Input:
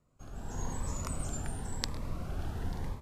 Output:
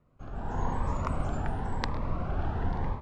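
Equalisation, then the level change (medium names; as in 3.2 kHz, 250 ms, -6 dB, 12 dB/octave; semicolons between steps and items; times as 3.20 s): low-pass 2.5 kHz 12 dB/octave; dynamic bell 900 Hz, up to +6 dB, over -59 dBFS, Q 1.2; +5.5 dB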